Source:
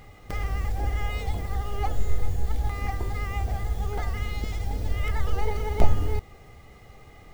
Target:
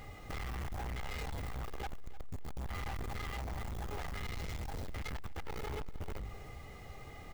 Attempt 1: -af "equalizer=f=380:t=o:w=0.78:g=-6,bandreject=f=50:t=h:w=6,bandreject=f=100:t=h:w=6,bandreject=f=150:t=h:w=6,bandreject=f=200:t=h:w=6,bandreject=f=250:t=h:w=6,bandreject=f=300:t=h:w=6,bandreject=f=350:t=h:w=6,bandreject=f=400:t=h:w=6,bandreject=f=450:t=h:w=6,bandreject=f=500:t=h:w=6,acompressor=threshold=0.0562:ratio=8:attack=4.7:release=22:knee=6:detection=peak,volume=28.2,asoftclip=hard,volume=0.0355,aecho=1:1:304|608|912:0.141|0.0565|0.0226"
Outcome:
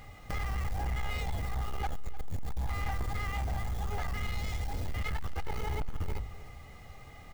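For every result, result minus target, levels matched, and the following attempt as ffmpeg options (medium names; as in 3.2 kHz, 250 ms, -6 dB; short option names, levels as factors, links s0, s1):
500 Hz band -4.0 dB; overload inside the chain: distortion -6 dB
-af "bandreject=f=50:t=h:w=6,bandreject=f=100:t=h:w=6,bandreject=f=150:t=h:w=6,bandreject=f=200:t=h:w=6,bandreject=f=250:t=h:w=6,bandreject=f=300:t=h:w=6,bandreject=f=350:t=h:w=6,bandreject=f=400:t=h:w=6,bandreject=f=450:t=h:w=6,bandreject=f=500:t=h:w=6,acompressor=threshold=0.0562:ratio=8:attack=4.7:release=22:knee=6:detection=peak,volume=28.2,asoftclip=hard,volume=0.0355,aecho=1:1:304|608|912:0.141|0.0565|0.0226"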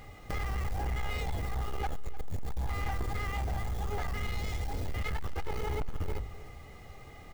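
overload inside the chain: distortion -6 dB
-af "bandreject=f=50:t=h:w=6,bandreject=f=100:t=h:w=6,bandreject=f=150:t=h:w=6,bandreject=f=200:t=h:w=6,bandreject=f=250:t=h:w=6,bandreject=f=300:t=h:w=6,bandreject=f=350:t=h:w=6,bandreject=f=400:t=h:w=6,bandreject=f=450:t=h:w=6,bandreject=f=500:t=h:w=6,acompressor=threshold=0.0562:ratio=8:attack=4.7:release=22:knee=6:detection=peak,volume=79.4,asoftclip=hard,volume=0.0126,aecho=1:1:304|608|912:0.141|0.0565|0.0226"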